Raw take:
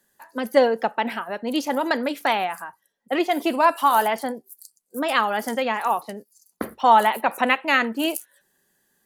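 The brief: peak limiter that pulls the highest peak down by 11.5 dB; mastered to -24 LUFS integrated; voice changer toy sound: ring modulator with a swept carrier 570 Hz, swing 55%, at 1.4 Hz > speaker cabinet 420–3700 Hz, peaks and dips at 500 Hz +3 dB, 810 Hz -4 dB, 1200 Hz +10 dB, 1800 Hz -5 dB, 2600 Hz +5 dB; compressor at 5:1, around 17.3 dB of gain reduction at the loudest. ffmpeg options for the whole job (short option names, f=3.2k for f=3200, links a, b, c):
-af "acompressor=threshold=-30dB:ratio=5,alimiter=level_in=3.5dB:limit=-24dB:level=0:latency=1,volume=-3.5dB,aeval=exprs='val(0)*sin(2*PI*570*n/s+570*0.55/1.4*sin(2*PI*1.4*n/s))':c=same,highpass=420,equalizer=f=500:t=q:w=4:g=3,equalizer=f=810:t=q:w=4:g=-4,equalizer=f=1.2k:t=q:w=4:g=10,equalizer=f=1.8k:t=q:w=4:g=-5,equalizer=f=2.6k:t=q:w=4:g=5,lowpass=f=3.7k:w=0.5412,lowpass=f=3.7k:w=1.3066,volume=14dB"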